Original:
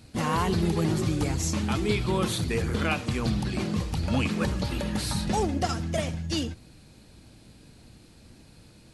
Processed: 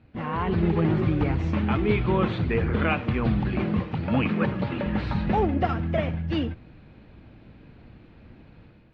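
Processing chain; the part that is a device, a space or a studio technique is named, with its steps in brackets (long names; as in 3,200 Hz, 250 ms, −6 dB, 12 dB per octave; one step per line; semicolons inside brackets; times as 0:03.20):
0:03.79–0:04.86: high-pass filter 100 Hz 24 dB per octave
action camera in a waterproof case (low-pass filter 2,600 Hz 24 dB per octave; automatic gain control gain up to 8 dB; level −4.5 dB; AAC 48 kbit/s 32,000 Hz)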